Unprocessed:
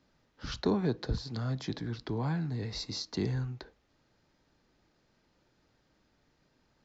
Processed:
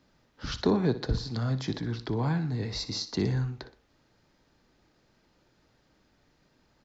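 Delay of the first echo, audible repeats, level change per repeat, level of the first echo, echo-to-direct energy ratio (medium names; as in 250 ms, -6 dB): 61 ms, 2, -6.5 dB, -14.5 dB, -13.5 dB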